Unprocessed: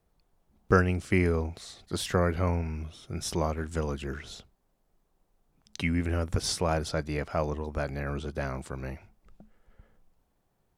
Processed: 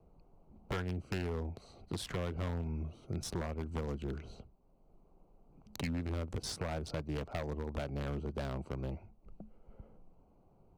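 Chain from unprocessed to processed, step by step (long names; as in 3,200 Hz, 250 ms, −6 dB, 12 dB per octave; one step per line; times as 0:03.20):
adaptive Wiener filter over 25 samples
downward compressor 3 to 1, threshold −32 dBFS, peak gain reduction 12 dB
wave folding −28 dBFS
multiband upward and downward compressor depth 40%
level −1.5 dB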